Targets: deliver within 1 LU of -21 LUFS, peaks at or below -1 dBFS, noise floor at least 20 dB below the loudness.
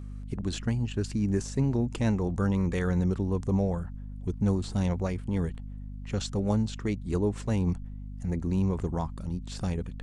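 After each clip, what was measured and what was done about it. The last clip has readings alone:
hum 50 Hz; highest harmonic 250 Hz; hum level -37 dBFS; loudness -30.0 LUFS; peak level -14.5 dBFS; loudness target -21.0 LUFS
-> de-hum 50 Hz, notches 5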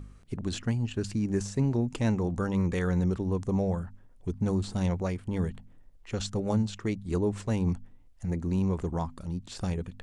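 hum not found; loudness -30.5 LUFS; peak level -15.5 dBFS; loudness target -21.0 LUFS
-> trim +9.5 dB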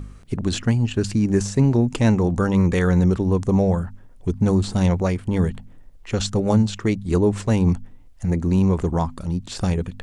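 loudness -21.0 LUFS; peak level -6.0 dBFS; noise floor -44 dBFS

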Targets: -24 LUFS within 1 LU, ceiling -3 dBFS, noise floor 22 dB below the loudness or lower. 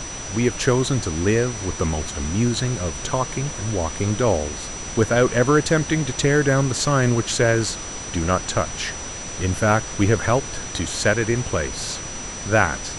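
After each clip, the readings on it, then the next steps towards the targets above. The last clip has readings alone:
steady tone 5.9 kHz; tone level -33 dBFS; noise floor -32 dBFS; noise floor target -44 dBFS; loudness -21.5 LUFS; peak level -2.5 dBFS; loudness target -24.0 LUFS
-> band-stop 5.9 kHz, Q 30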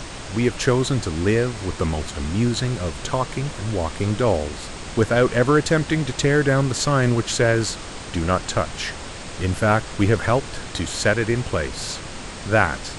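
steady tone not found; noise floor -35 dBFS; noise floor target -44 dBFS
-> noise print and reduce 9 dB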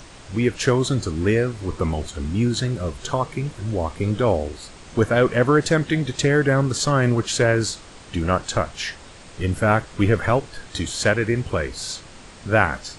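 noise floor -43 dBFS; noise floor target -44 dBFS
-> noise print and reduce 6 dB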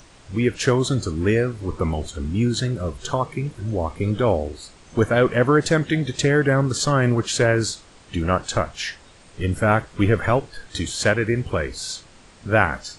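noise floor -49 dBFS; loudness -22.0 LUFS; peak level -2.5 dBFS; loudness target -24.0 LUFS
-> trim -2 dB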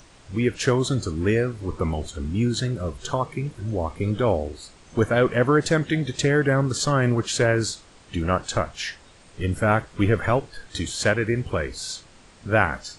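loudness -24.0 LUFS; peak level -4.5 dBFS; noise floor -51 dBFS

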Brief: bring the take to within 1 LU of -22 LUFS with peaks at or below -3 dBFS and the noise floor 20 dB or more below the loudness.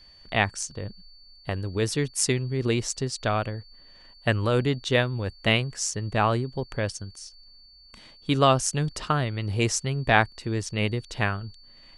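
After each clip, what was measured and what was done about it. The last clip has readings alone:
steady tone 4.5 kHz; tone level -51 dBFS; loudness -26.0 LUFS; peak level -3.0 dBFS; loudness target -22.0 LUFS
-> band-stop 4.5 kHz, Q 30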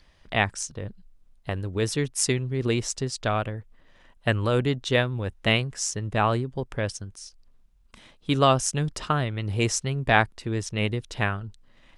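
steady tone not found; loudness -26.0 LUFS; peak level -2.5 dBFS; loudness target -22.0 LUFS
-> trim +4 dB; peak limiter -3 dBFS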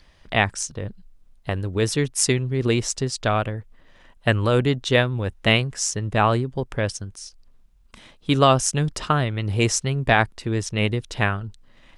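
loudness -22.5 LUFS; peak level -3.0 dBFS; noise floor -54 dBFS

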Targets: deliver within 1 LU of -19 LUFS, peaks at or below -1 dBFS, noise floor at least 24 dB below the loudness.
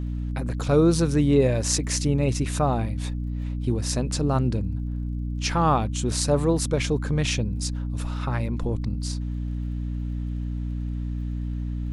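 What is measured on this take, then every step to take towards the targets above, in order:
tick rate 34 per s; hum 60 Hz; highest harmonic 300 Hz; hum level -26 dBFS; loudness -25.5 LUFS; peak level -6.0 dBFS; loudness target -19.0 LUFS
-> de-click; hum notches 60/120/180/240/300 Hz; trim +6.5 dB; peak limiter -1 dBFS

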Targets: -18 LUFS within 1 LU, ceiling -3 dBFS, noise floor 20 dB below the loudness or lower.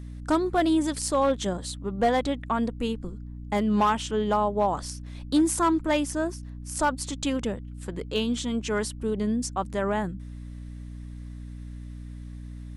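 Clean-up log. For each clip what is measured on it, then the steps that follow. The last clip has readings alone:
clipped samples 0.4%; clipping level -15.5 dBFS; hum 60 Hz; highest harmonic 300 Hz; hum level -36 dBFS; loudness -27.0 LUFS; peak level -15.5 dBFS; loudness target -18.0 LUFS
-> clip repair -15.5 dBFS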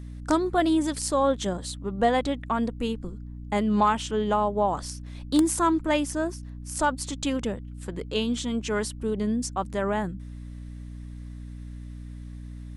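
clipped samples 0.0%; hum 60 Hz; highest harmonic 300 Hz; hum level -36 dBFS
-> hum notches 60/120/180/240/300 Hz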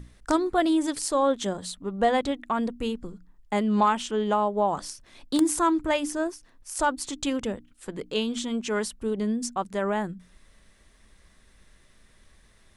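hum not found; loudness -27.0 LUFS; peak level -7.0 dBFS; loudness target -18.0 LUFS
-> trim +9 dB; peak limiter -3 dBFS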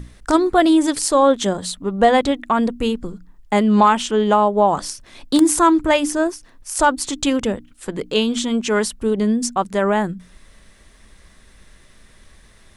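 loudness -18.0 LUFS; peak level -3.0 dBFS; noise floor -50 dBFS

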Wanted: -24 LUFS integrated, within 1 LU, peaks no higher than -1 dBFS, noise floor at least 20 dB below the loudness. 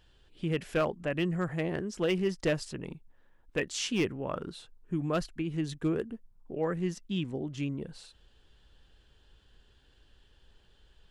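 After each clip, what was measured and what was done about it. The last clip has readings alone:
clipped samples 0.2%; clipping level -21.0 dBFS; loudness -33.0 LUFS; peak level -21.0 dBFS; loudness target -24.0 LUFS
-> clip repair -21 dBFS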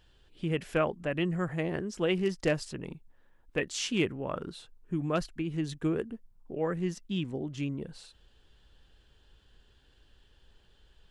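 clipped samples 0.0%; loudness -33.0 LUFS; peak level -14.5 dBFS; loudness target -24.0 LUFS
-> trim +9 dB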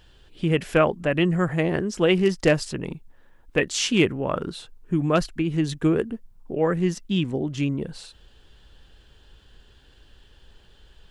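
loudness -24.0 LUFS; peak level -5.5 dBFS; noise floor -55 dBFS

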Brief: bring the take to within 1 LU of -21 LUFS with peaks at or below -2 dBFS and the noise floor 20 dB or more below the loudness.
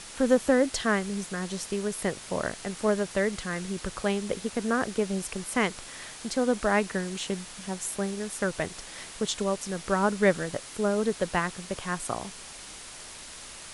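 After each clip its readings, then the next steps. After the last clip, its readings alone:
noise floor -44 dBFS; noise floor target -49 dBFS; loudness -29.0 LUFS; peak level -8.5 dBFS; loudness target -21.0 LUFS
-> noise reduction 6 dB, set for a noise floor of -44 dBFS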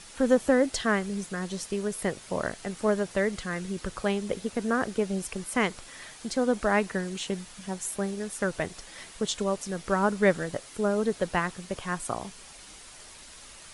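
noise floor -48 dBFS; noise floor target -49 dBFS
-> noise reduction 6 dB, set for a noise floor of -48 dBFS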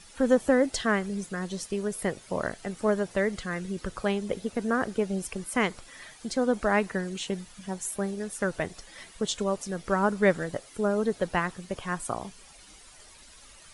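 noise floor -52 dBFS; loudness -29.0 LUFS; peak level -8.5 dBFS; loudness target -21.0 LUFS
-> trim +8 dB; peak limiter -2 dBFS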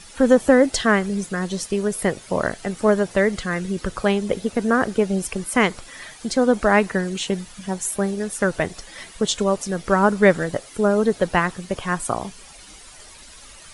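loudness -21.0 LUFS; peak level -2.0 dBFS; noise floor -44 dBFS

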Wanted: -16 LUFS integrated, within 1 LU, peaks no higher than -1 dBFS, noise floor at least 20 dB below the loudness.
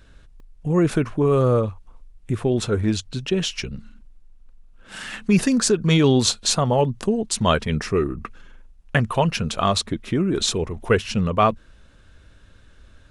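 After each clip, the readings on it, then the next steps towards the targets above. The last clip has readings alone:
dropouts 1; longest dropout 1.4 ms; loudness -21.0 LUFS; peak level -4.5 dBFS; loudness target -16.0 LUFS
-> interpolate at 0.40 s, 1.4 ms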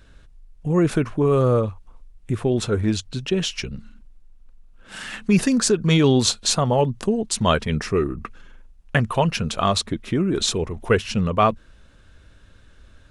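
dropouts 0; loudness -21.0 LUFS; peak level -4.5 dBFS; loudness target -16.0 LUFS
-> trim +5 dB; peak limiter -1 dBFS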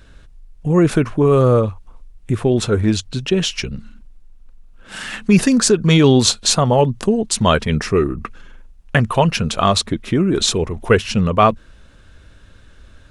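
loudness -16.5 LUFS; peak level -1.0 dBFS; noise floor -46 dBFS

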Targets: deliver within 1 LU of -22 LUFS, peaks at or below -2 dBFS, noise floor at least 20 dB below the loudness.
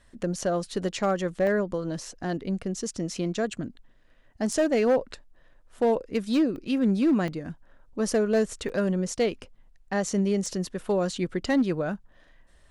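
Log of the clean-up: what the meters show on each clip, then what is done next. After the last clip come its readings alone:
clipped samples 0.8%; clipping level -17.0 dBFS; dropouts 5; longest dropout 1.6 ms; loudness -27.0 LUFS; peak level -17.0 dBFS; loudness target -22.0 LUFS
-> clip repair -17 dBFS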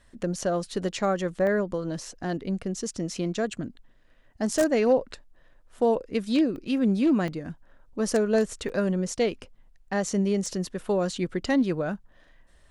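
clipped samples 0.0%; dropouts 5; longest dropout 1.6 ms
-> interpolate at 1.47/6.56/7.28/8.69/10.46 s, 1.6 ms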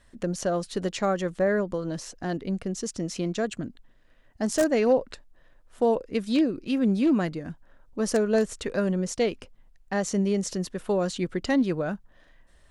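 dropouts 0; loudness -27.0 LUFS; peak level -8.0 dBFS; loudness target -22.0 LUFS
-> trim +5 dB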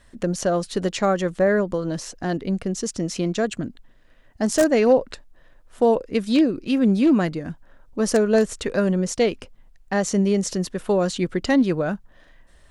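loudness -22.0 LUFS; peak level -3.0 dBFS; noise floor -53 dBFS

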